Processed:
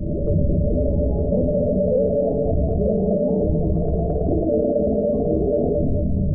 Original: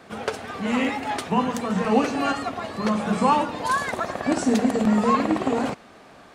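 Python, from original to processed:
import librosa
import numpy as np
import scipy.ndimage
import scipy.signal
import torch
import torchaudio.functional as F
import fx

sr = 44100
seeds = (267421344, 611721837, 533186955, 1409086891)

y = fx.tape_start_head(x, sr, length_s=0.35)
y = fx.dmg_wind(y, sr, seeds[0], corner_hz=85.0, level_db=-22.0)
y = fx.hum_notches(y, sr, base_hz=60, count=7)
y = fx.comb_fb(y, sr, f0_hz=64.0, decay_s=0.39, harmonics='odd', damping=0.0, mix_pct=70)
y = fx.rider(y, sr, range_db=3, speed_s=0.5)
y = scipy.signal.sosfilt(scipy.signal.cheby1(6, 9, 610.0, 'lowpass', fs=sr, output='sos'), y)
y = fx.doubler(y, sr, ms=12.0, db=-8)
y = fx.echo_feedback(y, sr, ms=225, feedback_pct=41, wet_db=-5.0)
y = fx.dynamic_eq(y, sr, hz=430.0, q=1.7, threshold_db=-45.0, ratio=4.0, max_db=4)
y = fx.formant_shift(y, sr, semitones=3)
y = fx.env_flatten(y, sr, amount_pct=70)
y = y * 10.0 ** (8.0 / 20.0)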